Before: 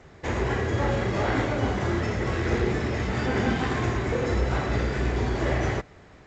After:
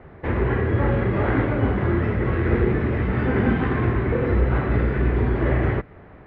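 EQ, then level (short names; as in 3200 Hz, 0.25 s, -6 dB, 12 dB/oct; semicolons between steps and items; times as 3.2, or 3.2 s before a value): Bessel low-pass 1800 Hz, order 4; dynamic EQ 730 Hz, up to -6 dB, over -43 dBFS, Q 1.5; air absorption 90 m; +6.0 dB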